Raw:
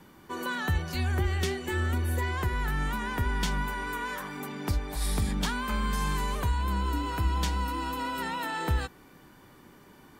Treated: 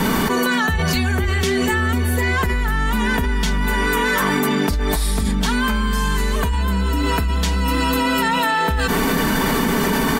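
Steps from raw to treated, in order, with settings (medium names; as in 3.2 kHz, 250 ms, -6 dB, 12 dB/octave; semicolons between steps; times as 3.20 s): comb 4.5 ms, depth 71%; level flattener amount 100%; trim +3 dB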